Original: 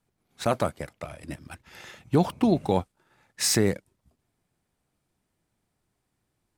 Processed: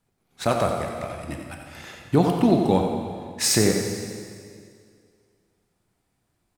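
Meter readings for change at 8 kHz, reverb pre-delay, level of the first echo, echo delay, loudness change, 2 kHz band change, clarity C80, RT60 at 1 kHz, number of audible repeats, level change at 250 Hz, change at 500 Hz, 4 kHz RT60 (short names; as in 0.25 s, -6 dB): +4.0 dB, 6 ms, -8.5 dB, 90 ms, +2.5 dB, +4.0 dB, 3.5 dB, 2.1 s, 1, +4.5 dB, +4.5 dB, 2.1 s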